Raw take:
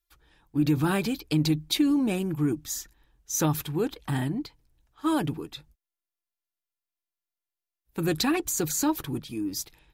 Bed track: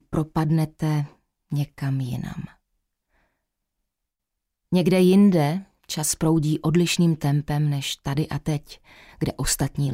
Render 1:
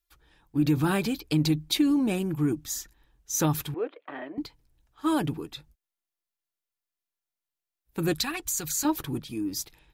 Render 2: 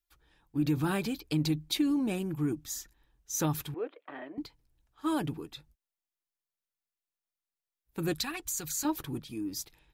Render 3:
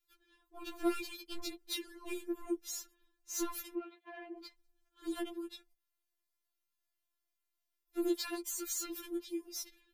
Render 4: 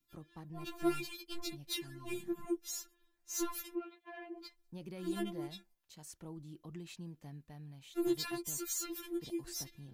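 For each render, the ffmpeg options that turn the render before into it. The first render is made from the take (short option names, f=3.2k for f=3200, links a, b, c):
-filter_complex "[0:a]asettb=1/sr,asplit=3[a][b][c];[a]atrim=end=3.744[d];[b]atrim=start=3.74:end=4.38,asetpts=PTS-STARTPTS,afade=t=in:d=0.004:c=qsin,afade=t=out:st=0.636:d=0.004:c=qsin,highpass=f=370:w=0.5412,highpass=f=370:w=1.3066,equalizer=f=390:t=q:w=4:g=-3,equalizer=f=590:t=q:w=4:g=7,equalizer=f=860:t=q:w=4:g=-9,equalizer=f=1.6k:t=q:w=4:g=-5,lowpass=f=2.3k:w=0.5412,lowpass=f=2.3k:w=1.3066[e];[c]atrim=start=4.376[f];[d][e]acrossfade=d=0.004:c1=hsin:c2=qsin[g];[g][f]acrossfade=d=0.004:c1=qsin:c2=hsin,asettb=1/sr,asplit=3[h][i][j];[h]atrim=end=8.134[k];[i]atrim=start=8.13:end=8.85,asetpts=PTS-STARTPTS,afade=t=in:d=0.004:c=qsin,afade=t=out:st=0.716:d=0.004:c=qsin,equalizer=f=350:w=0.51:g=-12.5[l];[j]atrim=start=8.846[m];[k][l]acrossfade=d=0.004:c1=hsin:c2=qsin[n];[n][m]acrossfade=d=0.004:c1=qsin:c2=hsin"
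-af "volume=-5dB"
-af "asoftclip=type=tanh:threshold=-28.5dB,afftfilt=real='re*4*eq(mod(b,16),0)':imag='im*4*eq(mod(b,16),0)':win_size=2048:overlap=0.75"
-filter_complex "[1:a]volume=-28dB[a];[0:a][a]amix=inputs=2:normalize=0"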